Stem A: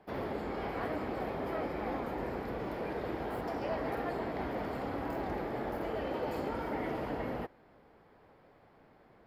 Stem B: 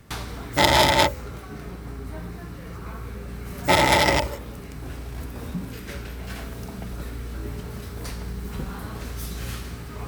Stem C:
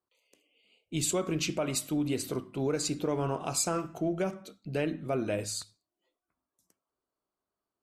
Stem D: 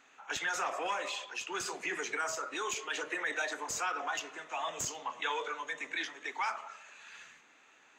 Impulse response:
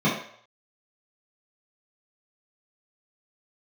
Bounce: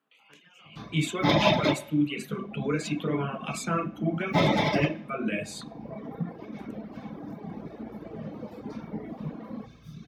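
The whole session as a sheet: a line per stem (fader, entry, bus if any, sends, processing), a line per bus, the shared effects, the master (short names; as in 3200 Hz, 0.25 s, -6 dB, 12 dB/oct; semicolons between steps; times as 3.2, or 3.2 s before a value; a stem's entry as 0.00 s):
-10.5 dB, 2.20 s, bus A, send -16 dB, resonant low shelf 140 Hz -13.5 dB, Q 3
-14.0 dB, 0.65 s, no bus, send -5 dB, resonant high shelf 6700 Hz -7 dB, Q 1.5; upward expander 1.5:1, over -31 dBFS
+0.5 dB, 0.00 s, bus A, send -20.5 dB, band shelf 2100 Hz +14.5 dB
-12.0 dB, 0.00 s, bus A, send -14 dB, tube stage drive 31 dB, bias 0.75; low-pass opened by the level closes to 850 Hz, open at -36 dBFS; compressor 4:1, threshold -48 dBFS, peak gain reduction 12 dB
bus A: 0.0 dB, HPF 430 Hz 24 dB/oct; compressor 2:1, threshold -41 dBFS, peak gain reduction 13 dB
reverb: on, RT60 0.60 s, pre-delay 3 ms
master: reverb removal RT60 1.7 s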